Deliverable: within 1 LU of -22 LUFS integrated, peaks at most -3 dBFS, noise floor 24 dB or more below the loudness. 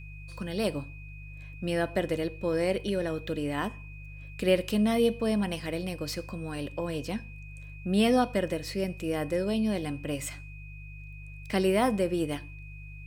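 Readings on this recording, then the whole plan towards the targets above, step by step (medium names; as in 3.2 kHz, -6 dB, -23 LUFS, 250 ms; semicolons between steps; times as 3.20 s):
hum 50 Hz; highest harmonic 150 Hz; hum level -42 dBFS; steady tone 2.5 kHz; tone level -49 dBFS; loudness -29.5 LUFS; peak level -12.0 dBFS; loudness target -22.0 LUFS
-> de-hum 50 Hz, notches 3; band-stop 2.5 kHz, Q 30; trim +7.5 dB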